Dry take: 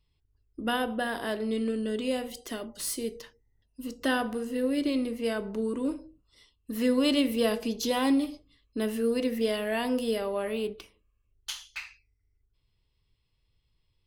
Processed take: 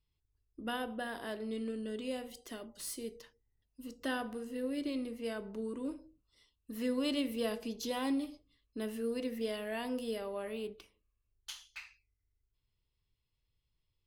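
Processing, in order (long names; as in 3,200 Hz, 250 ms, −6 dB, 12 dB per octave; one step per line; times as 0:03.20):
level −9 dB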